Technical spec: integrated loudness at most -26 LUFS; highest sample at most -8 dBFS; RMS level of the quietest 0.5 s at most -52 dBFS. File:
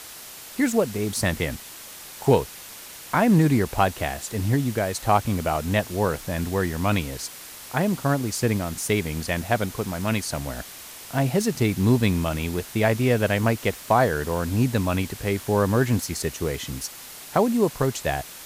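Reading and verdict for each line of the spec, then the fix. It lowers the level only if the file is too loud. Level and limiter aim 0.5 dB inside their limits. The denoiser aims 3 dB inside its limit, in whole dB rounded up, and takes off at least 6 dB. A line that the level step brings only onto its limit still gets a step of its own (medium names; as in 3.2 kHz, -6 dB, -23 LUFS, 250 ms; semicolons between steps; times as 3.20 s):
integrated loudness -24.0 LUFS: fail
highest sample -6.5 dBFS: fail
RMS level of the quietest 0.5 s -41 dBFS: fail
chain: noise reduction 12 dB, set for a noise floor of -41 dBFS; trim -2.5 dB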